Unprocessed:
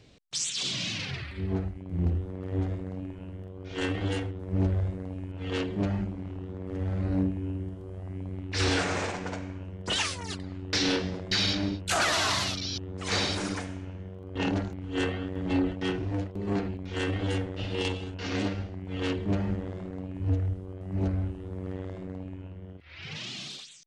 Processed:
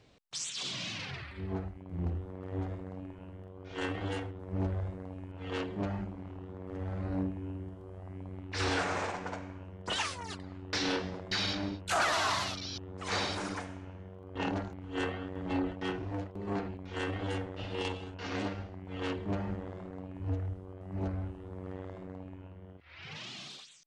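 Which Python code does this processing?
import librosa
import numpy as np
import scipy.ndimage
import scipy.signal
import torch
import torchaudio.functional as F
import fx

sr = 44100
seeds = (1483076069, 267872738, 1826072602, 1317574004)

y = fx.peak_eq(x, sr, hz=980.0, db=7.5, octaves=1.8)
y = y * 10.0 ** (-7.5 / 20.0)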